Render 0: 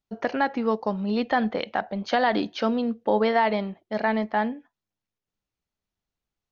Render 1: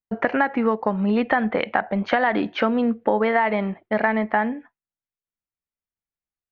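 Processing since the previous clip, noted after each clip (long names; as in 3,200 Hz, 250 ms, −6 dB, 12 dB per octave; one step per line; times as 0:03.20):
noise gate with hold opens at −47 dBFS
drawn EQ curve 580 Hz 0 dB, 2,100 Hz +5 dB, 4,900 Hz −16 dB
downward compressor 4 to 1, threshold −25 dBFS, peak gain reduction 9 dB
level +8 dB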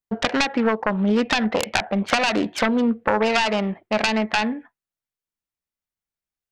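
phase distortion by the signal itself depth 0.65 ms
level +1.5 dB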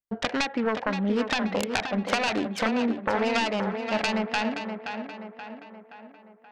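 tape delay 526 ms, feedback 55%, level −6 dB, low-pass 3,000 Hz
level −6 dB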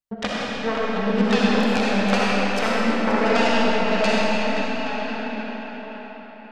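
gate pattern "xx..x.xxxx.x" 94 BPM −12 dB
convolution reverb RT60 4.3 s, pre-delay 20 ms, DRR −6.5 dB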